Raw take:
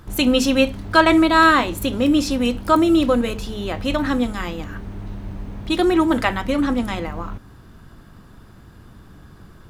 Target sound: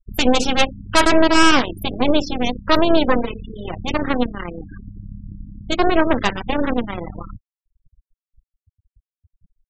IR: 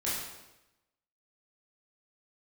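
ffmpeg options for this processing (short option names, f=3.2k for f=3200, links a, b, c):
-af "aeval=exprs='0.891*(cos(1*acos(clip(val(0)/0.891,-1,1)))-cos(1*PI/2))+0.398*(cos(6*acos(clip(val(0)/0.891,-1,1)))-cos(6*PI/2))':c=same,afftfilt=real='re*gte(hypot(re,im),0.0891)':imag='im*gte(hypot(re,im),0.0891)':win_size=1024:overlap=0.75,volume=-4dB"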